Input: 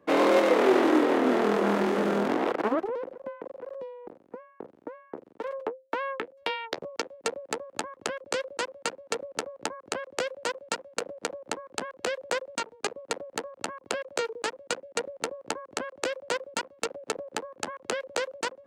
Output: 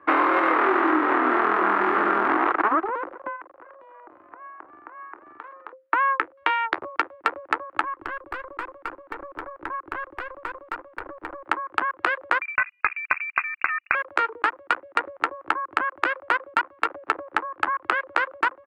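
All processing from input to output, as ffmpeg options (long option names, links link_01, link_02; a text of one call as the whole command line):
ffmpeg -i in.wav -filter_complex "[0:a]asettb=1/sr,asplit=3[link_01][link_02][link_03];[link_01]atrim=end=3.364[link_04];[link_02]atrim=start=3.36:end=5.73,asetpts=PTS-STARTPTS,afade=type=in:duration=0.004:curve=qsin,afade=type=out:start_time=2.366:duration=0.004:curve=qsin,acompressor=threshold=-49dB:ratio=8:attack=3.2:release=140:knee=1:detection=peak,asplit=7[link_05][link_06][link_07][link_08][link_09][link_10][link_11];[link_06]adelay=291,afreqshift=73,volume=-11dB[link_12];[link_07]adelay=582,afreqshift=146,volume=-16.5dB[link_13];[link_08]adelay=873,afreqshift=219,volume=-22dB[link_14];[link_09]adelay=1164,afreqshift=292,volume=-27.5dB[link_15];[link_10]adelay=1455,afreqshift=365,volume=-33.1dB[link_16];[link_11]adelay=1746,afreqshift=438,volume=-38.6dB[link_17];[link_05][link_12][link_13][link_14][link_15][link_16][link_17]amix=inputs=7:normalize=0,atrim=end_sample=104517[link_18];[link_03]atrim=start=5.726[link_19];[link_04][link_18]acrossfade=duration=0.004:curve1=hsin:curve2=qsin[link_20];[link_20][link_19]acrossfade=duration=0.004:curve1=qsin:curve2=hsin,asettb=1/sr,asplit=3[link_21][link_22][link_23];[link_21]atrim=end=7.834[link_24];[link_22]atrim=start=7.83:end=11.44,asetpts=PTS-STARTPTS,afade=type=in:duration=0.004:curve=qsin,afade=type=out:start_time=3.606:duration=0.004:curve=qsin,equalizer=frequency=330:width=1.4:gain=5.5,aeval=exprs='(tanh(31.6*val(0)+0.45)-tanh(0.45))/31.6':channel_layout=same,acompressor=threshold=-36dB:ratio=10:attack=3.2:release=140:knee=1:detection=peak[link_25];[link_23]atrim=start=11.436[link_26];[link_24][link_25]acrossfade=duration=0.004:curve1=hsin:curve2=qsin[link_27];[link_27][link_26]acrossfade=duration=0.004:curve1=qsin:curve2=hsin,asettb=1/sr,asplit=3[link_28][link_29][link_30];[link_28]atrim=end=12.414[link_31];[link_29]atrim=start=12.41:end=13.95,asetpts=PTS-STARTPTS,afade=type=in:duration=0.004:curve=qsin,afade=type=out:start_time=1.536:duration=0.004:curve=qsin,agate=range=-35dB:threshold=-47dB:ratio=16:release=100:detection=peak,lowpass=frequency=2500:width_type=q:width=0.5098,lowpass=frequency=2500:width_type=q:width=0.6013,lowpass=frequency=2500:width_type=q:width=0.9,lowpass=frequency=2500:width_type=q:width=2.563,afreqshift=-2900,acompressor=mode=upward:threshold=-34dB:ratio=2.5:attack=3.2:release=140:knee=2.83:detection=peak[link_32];[link_30]atrim=start=13.946[link_33];[link_31][link_32]acrossfade=duration=0.004:curve1=hsin:curve2=qsin[link_34];[link_34][link_33]acrossfade=duration=0.004:curve1=qsin:curve2=hsin,firequalizer=gain_entry='entry(100,0);entry(140,-12);entry(220,-12);entry(320,4);entry(480,-8);entry(750,3);entry(1200,14);entry(3400,-6);entry(6400,-23);entry(9700,-15)':delay=0.05:min_phase=1,acompressor=threshold=-22dB:ratio=6,volume=5dB" out.wav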